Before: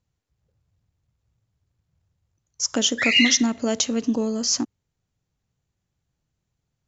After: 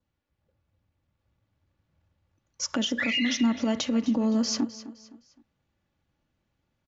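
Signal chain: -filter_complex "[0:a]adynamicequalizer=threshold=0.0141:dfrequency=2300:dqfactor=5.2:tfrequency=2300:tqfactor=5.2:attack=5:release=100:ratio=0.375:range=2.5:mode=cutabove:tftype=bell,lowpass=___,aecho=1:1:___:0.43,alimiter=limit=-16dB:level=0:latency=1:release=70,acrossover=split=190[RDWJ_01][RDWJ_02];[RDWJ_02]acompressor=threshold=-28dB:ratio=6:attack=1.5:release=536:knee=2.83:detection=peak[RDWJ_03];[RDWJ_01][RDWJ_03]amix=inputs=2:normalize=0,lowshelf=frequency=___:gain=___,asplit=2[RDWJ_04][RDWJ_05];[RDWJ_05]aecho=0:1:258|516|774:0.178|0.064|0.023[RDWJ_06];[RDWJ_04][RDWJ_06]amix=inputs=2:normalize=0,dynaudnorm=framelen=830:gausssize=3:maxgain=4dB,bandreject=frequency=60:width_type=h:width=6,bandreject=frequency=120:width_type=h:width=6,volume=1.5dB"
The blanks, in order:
3.3k, 3.5, 84, -9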